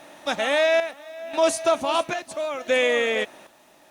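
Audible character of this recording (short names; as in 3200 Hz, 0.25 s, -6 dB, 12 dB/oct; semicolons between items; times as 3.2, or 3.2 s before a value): chopped level 0.75 Hz, depth 65%, duty 60%; a quantiser's noise floor 10-bit, dither none; Opus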